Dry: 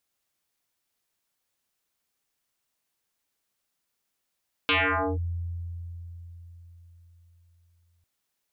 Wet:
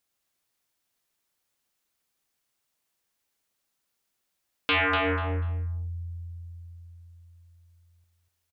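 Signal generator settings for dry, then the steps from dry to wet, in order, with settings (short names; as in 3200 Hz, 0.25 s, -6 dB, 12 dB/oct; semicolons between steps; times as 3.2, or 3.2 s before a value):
FM tone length 3.35 s, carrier 85.7 Hz, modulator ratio 4.38, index 8.9, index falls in 0.49 s linear, decay 4.36 s, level -19 dB
feedback echo 0.244 s, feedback 20%, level -6 dB; Doppler distortion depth 0.16 ms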